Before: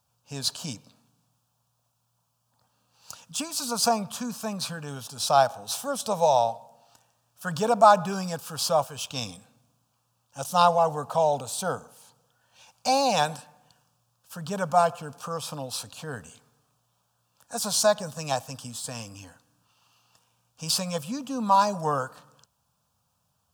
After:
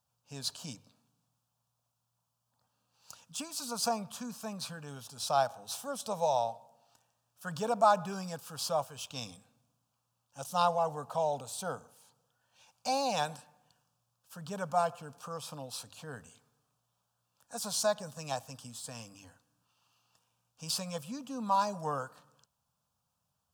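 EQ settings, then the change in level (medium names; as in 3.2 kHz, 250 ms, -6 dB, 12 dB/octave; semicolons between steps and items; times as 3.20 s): hum notches 50/100 Hz; -8.5 dB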